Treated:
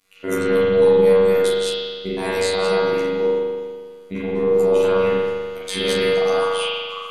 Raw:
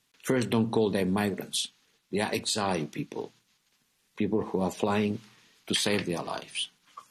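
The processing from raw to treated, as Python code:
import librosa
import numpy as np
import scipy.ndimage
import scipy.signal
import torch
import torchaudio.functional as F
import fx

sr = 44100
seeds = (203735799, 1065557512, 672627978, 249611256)

p1 = fx.local_reverse(x, sr, ms=121.0)
p2 = fx.peak_eq(p1, sr, hz=3700.0, db=-4.0, octaves=2.9)
p3 = fx.hum_notches(p2, sr, base_hz=50, count=4)
p4 = fx.over_compress(p3, sr, threshold_db=-35.0, ratio=-1.0)
p5 = p3 + F.gain(torch.from_numpy(p4), -2.0).numpy()
p6 = fx.robotise(p5, sr, hz=94.8)
p7 = p6 + fx.room_early_taps(p6, sr, ms=(15, 26, 38), db=(-7.5, -8.5, -10.0), dry=0)
y = fx.rev_spring(p7, sr, rt60_s=1.7, pass_ms=(40,), chirp_ms=20, drr_db=-8.0)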